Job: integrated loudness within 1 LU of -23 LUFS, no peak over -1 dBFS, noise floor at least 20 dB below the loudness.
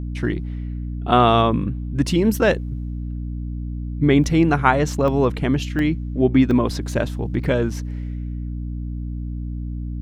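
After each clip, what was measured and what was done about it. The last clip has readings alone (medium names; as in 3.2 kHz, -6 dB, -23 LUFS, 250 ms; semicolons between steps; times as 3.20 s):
dropouts 5; longest dropout 1.3 ms; hum 60 Hz; highest harmonic 300 Hz; hum level -25 dBFS; loudness -21.0 LUFS; peak level -1.5 dBFS; loudness target -23.0 LUFS
-> interpolate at 4.24/5.08/5.79/6.51/7.44 s, 1.3 ms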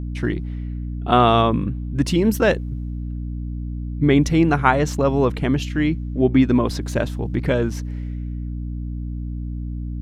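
dropouts 0; hum 60 Hz; highest harmonic 300 Hz; hum level -25 dBFS
-> hum notches 60/120/180/240/300 Hz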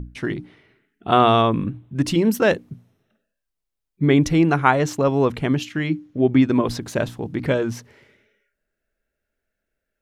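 hum not found; loudness -20.0 LUFS; peak level -1.5 dBFS; loudness target -23.0 LUFS
-> trim -3 dB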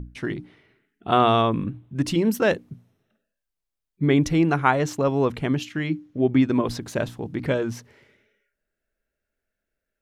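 loudness -23.0 LUFS; peak level -4.5 dBFS; noise floor -84 dBFS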